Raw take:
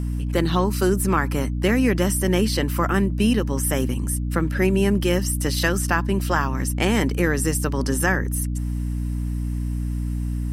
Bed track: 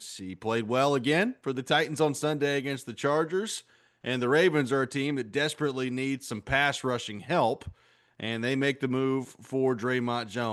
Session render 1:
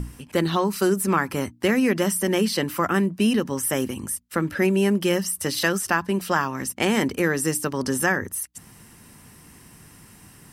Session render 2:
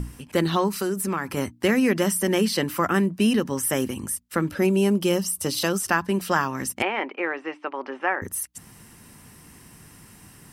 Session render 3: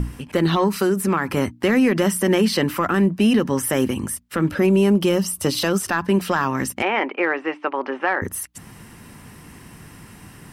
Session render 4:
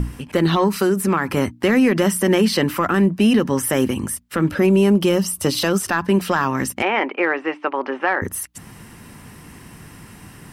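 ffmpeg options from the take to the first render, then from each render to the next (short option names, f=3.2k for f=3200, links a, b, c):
-af "bandreject=f=60:t=h:w=6,bandreject=f=120:t=h:w=6,bandreject=f=180:t=h:w=6,bandreject=f=240:t=h:w=6,bandreject=f=300:t=h:w=6"
-filter_complex "[0:a]asettb=1/sr,asplit=3[a][b][c];[a]atrim=end=0.684[d];[b]atrim=start=0.68:end=1.37,asetpts=PTS-STARTPTS,afade=t=in:d=0.004:c=qsin,afade=t=out:st=0.686:d=0.004:c=qsin,acompressor=threshold=-24dB:ratio=2.5:attack=3.2:release=140:knee=1:detection=peak[e];[c]atrim=start=1.366[f];[d][e]acrossfade=d=0.004:c1=hsin:c2=qsin[g];[g][f]acrossfade=d=0.004:c1=qsin:c2=hsin,asettb=1/sr,asplit=3[h][i][j];[h]atrim=end=4.484[k];[i]atrim=start=4.48:end=5.84,asetpts=PTS-STARTPTS,afade=t=in:d=0.004:c=qsin,afade=t=out:st=1.356:d=0.004:c=qsin,equalizer=f=1.8k:w=2.6:g=-9[l];[j]atrim=start=5.836[m];[k][l]acrossfade=d=0.004:c1=hsin:c2=qsin[n];[n][m]acrossfade=d=0.004:c1=qsin:c2=hsin,asettb=1/sr,asplit=3[o][p][q];[o]atrim=end=6.824[r];[p]atrim=start=6.82:end=8.22,asetpts=PTS-STARTPTS,afade=t=in:d=0.004:c=qsin,afade=t=out:st=1.396:d=0.004:c=qsin,highpass=f=380:w=0.5412,highpass=f=380:w=1.3066,equalizer=f=450:t=q:w=4:g=-8,equalizer=f=810:t=q:w=4:g=4,equalizer=f=1.7k:t=q:w=4:g=-5,equalizer=f=2.4k:t=q:w=4:g=4,lowpass=f=2.6k:w=0.5412,lowpass=f=2.6k:w=1.3066[s];[q]atrim=start=8.216[t];[r][s]acrossfade=d=0.004:c1=hsin:c2=qsin[u];[u][t]acrossfade=d=0.004:c1=qsin:c2=hsin"
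-filter_complex "[0:a]acrossover=split=3800[a][b];[a]acontrast=85[c];[c][b]amix=inputs=2:normalize=0,alimiter=limit=-9.5dB:level=0:latency=1:release=65"
-af "volume=1.5dB"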